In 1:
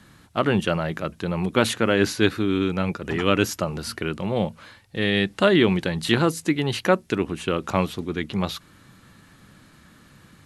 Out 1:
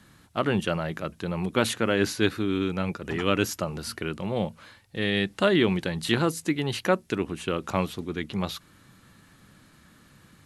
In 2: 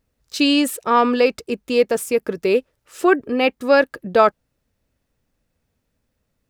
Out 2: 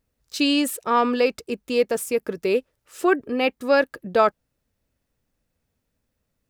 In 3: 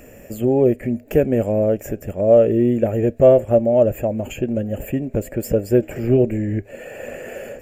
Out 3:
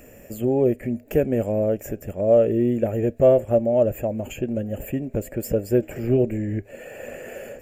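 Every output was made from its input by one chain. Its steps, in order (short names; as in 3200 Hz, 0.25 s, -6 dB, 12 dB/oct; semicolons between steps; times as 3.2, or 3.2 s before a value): high shelf 7600 Hz +3.5 dB; gain -4 dB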